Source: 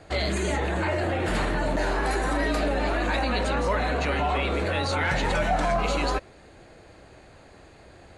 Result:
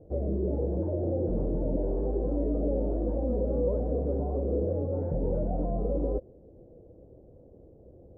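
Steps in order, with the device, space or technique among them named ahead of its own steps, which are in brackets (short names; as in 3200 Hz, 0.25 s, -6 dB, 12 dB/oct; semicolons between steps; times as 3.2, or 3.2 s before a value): under water (LPF 490 Hz 24 dB/oct; bell 510 Hz +7.5 dB 0.35 oct); gain -1.5 dB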